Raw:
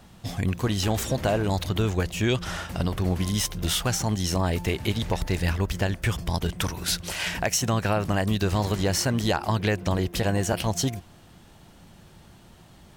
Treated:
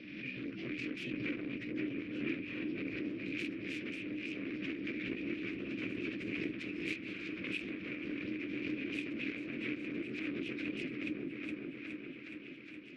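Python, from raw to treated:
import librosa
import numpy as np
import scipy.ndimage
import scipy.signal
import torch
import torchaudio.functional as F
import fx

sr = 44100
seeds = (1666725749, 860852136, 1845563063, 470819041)

p1 = fx.partial_stretch(x, sr, pct=75)
p2 = fx.cheby_harmonics(p1, sr, harmonics=(7,), levels_db=(-10,), full_scale_db=-12.0)
p3 = fx.double_bandpass(p2, sr, hz=850.0, octaves=3.0)
p4 = fx.rider(p3, sr, range_db=10, speed_s=0.5)
p5 = p4 + fx.echo_opening(p4, sr, ms=417, hz=400, octaves=1, feedback_pct=70, wet_db=0, dry=0)
p6 = fx.pre_swell(p5, sr, db_per_s=38.0)
y = p6 * librosa.db_to_amplitude(-5.0)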